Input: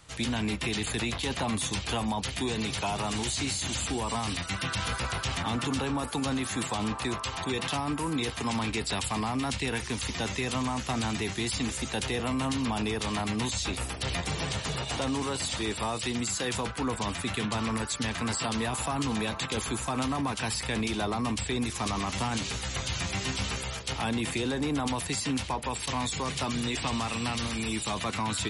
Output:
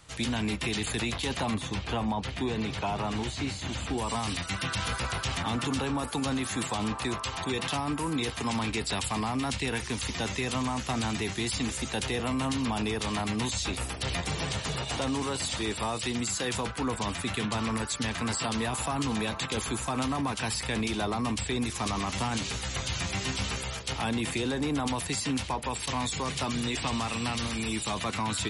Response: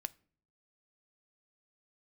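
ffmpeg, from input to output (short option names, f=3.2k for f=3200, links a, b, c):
-filter_complex "[0:a]asettb=1/sr,asplit=3[a][b][c];[a]atrim=end=1.544[d];[b]atrim=start=1.54:end=3.98,asetpts=PTS-STARTPTS,afade=t=in:d=0.004:c=qsin,afade=t=out:st=2.436:d=0.004:c=qsin,aemphasis=mode=reproduction:type=75fm[e];[c]atrim=start=3.976[f];[d][e]acrossfade=d=0.004:c1=hsin:c2=qsin[g];[g][f]acrossfade=d=0.004:c1=qsin:c2=hsin"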